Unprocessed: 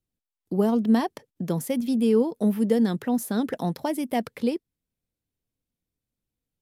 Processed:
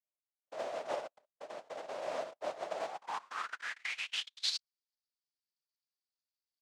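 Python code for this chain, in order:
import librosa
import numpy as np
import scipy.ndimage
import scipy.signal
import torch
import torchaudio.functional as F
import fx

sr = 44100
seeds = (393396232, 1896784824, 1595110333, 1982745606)

y = fx.noise_vocoder(x, sr, seeds[0], bands=1)
y = fx.filter_sweep_bandpass(y, sr, from_hz=620.0, to_hz=4700.0, start_s=2.76, end_s=4.59, q=5.7)
y = fx.quant_float(y, sr, bits=6)
y = y * librosa.db_to_amplitude(-1.5)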